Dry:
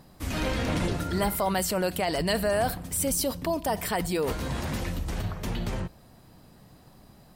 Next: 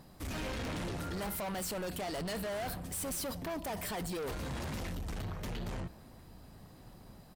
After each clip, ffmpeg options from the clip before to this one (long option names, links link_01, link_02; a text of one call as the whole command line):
ffmpeg -i in.wav -filter_complex "[0:a]asoftclip=type=tanh:threshold=-33dB,asplit=2[link_01][link_02];[link_02]adelay=1341,volume=-18dB,highshelf=frequency=4000:gain=-30.2[link_03];[link_01][link_03]amix=inputs=2:normalize=0,volume=-2.5dB" out.wav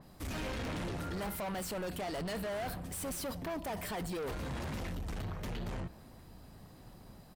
ffmpeg -i in.wav -af "adynamicequalizer=threshold=0.00158:dfrequency=3600:dqfactor=0.7:tfrequency=3600:tqfactor=0.7:attack=5:release=100:ratio=0.375:range=2:mode=cutabove:tftype=highshelf" out.wav